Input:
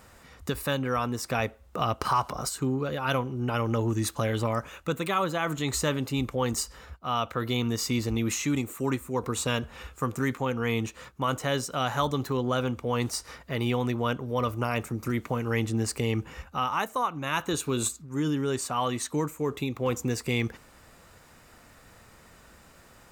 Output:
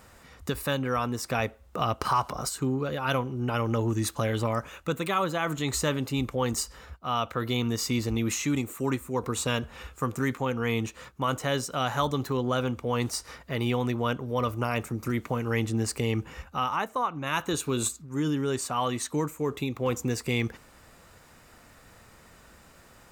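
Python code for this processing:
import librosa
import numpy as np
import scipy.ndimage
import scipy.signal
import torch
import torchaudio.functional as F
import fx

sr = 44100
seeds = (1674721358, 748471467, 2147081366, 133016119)

y = fx.high_shelf(x, sr, hz=fx.line((16.75, 3900.0), (17.25, 6200.0)), db=-9.5, at=(16.75, 17.25), fade=0.02)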